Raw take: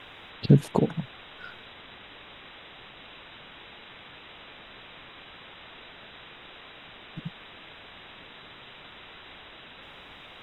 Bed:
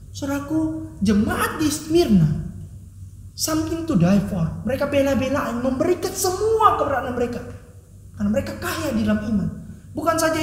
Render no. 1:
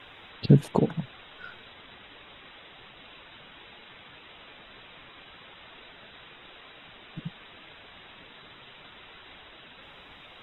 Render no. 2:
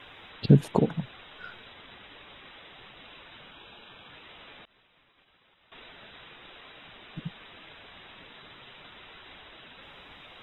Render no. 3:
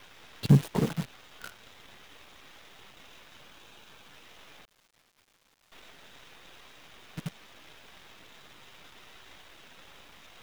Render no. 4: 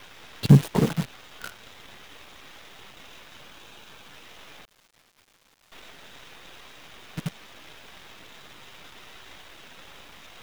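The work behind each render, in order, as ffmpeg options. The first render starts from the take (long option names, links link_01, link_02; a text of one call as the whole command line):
ffmpeg -i in.wav -af "afftdn=noise_reduction=6:noise_floor=-48" out.wav
ffmpeg -i in.wav -filter_complex "[0:a]asettb=1/sr,asplit=3[link_01][link_02][link_03];[link_01]atrim=end=3.514[link_04];[link_02]atrim=start=3.51:end=4.1,asetpts=PTS-STARTPTS,afade=type=in:duration=0.004:curve=qsin,afade=type=out:start_time=0.586:duration=0.004:curve=qsin,asuperstop=centerf=2000:order=4:qfactor=4.6[link_05];[link_03]atrim=start=4.096[link_06];[link_04][link_05]acrossfade=duration=0.004:curve1=hsin:curve2=qsin[link_07];[link_07][link_06]acrossfade=duration=0.004:curve1=qsin:curve2=hsin,asettb=1/sr,asplit=3[link_08][link_09][link_10];[link_08]atrim=end=4.654[link_11];[link_09]atrim=start=4.65:end=5.72,asetpts=PTS-STARTPTS,afade=type=in:duration=0.004:curve=qsin,afade=type=out:start_time=1.066:duration=0.004:curve=qsin,agate=range=-33dB:threshold=-40dB:ratio=3:release=100:detection=peak[link_12];[link_10]atrim=start=5.716[link_13];[link_11][link_12]acrossfade=duration=0.004:curve1=hsin:curve2=qsin[link_14];[link_14][link_13]acrossfade=duration=0.004:curve1=qsin:curve2=hsin" out.wav
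ffmpeg -i in.wav -filter_complex "[0:a]acrossover=split=220[link_01][link_02];[link_02]asoftclip=type=tanh:threshold=-26.5dB[link_03];[link_01][link_03]amix=inputs=2:normalize=0,acrusher=bits=7:dc=4:mix=0:aa=0.000001" out.wav
ffmpeg -i in.wav -af "volume=5.5dB" out.wav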